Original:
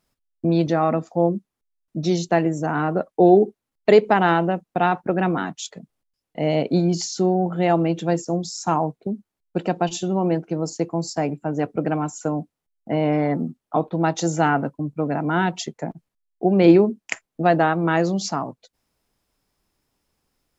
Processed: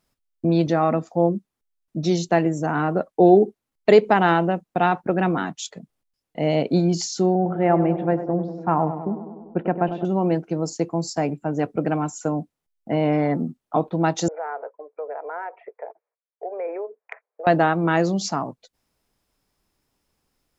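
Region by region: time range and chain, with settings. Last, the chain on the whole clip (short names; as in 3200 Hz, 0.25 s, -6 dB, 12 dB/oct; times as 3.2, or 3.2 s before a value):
7.35–10.05 LPF 2100 Hz 24 dB/oct + tape echo 99 ms, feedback 81%, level -8.5 dB, low-pass 1100 Hz
14.28–17.47 Chebyshev band-pass 440–2400 Hz, order 5 + tilt -4.5 dB/oct + compressor 2.5:1, threshold -31 dBFS
whole clip: dry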